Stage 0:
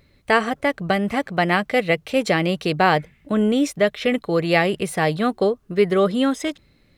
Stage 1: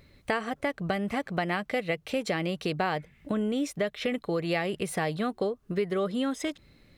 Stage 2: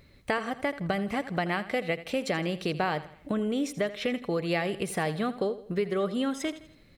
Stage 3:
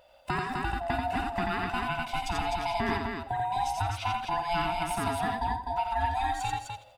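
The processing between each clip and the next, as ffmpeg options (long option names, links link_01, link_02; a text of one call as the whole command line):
ffmpeg -i in.wav -af "acompressor=threshold=-29dB:ratio=3" out.wav
ffmpeg -i in.wav -af "aecho=1:1:82|164|246|328:0.178|0.0765|0.0329|0.0141" out.wav
ffmpeg -i in.wav -af "afftfilt=real='real(if(lt(b,1008),b+24*(1-2*mod(floor(b/24),2)),b),0)':imag='imag(if(lt(b,1008),b+24*(1-2*mod(floor(b/24),2)),b),0)':win_size=2048:overlap=0.75,aecho=1:1:52.48|87.46|253.6:0.282|0.708|0.631,volume=-3dB" out.wav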